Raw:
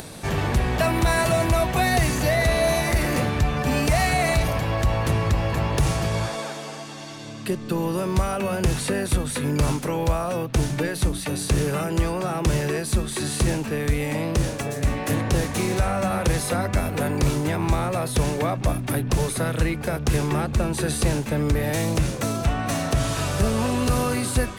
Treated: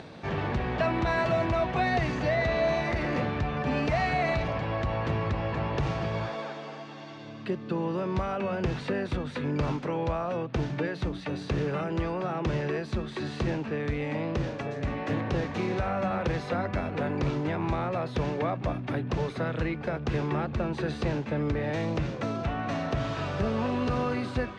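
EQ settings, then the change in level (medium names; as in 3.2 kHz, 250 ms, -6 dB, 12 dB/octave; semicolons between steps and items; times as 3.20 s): high-pass 140 Hz 6 dB/octave; distance through air 200 m; treble shelf 9.9 kHz -12 dB; -3.5 dB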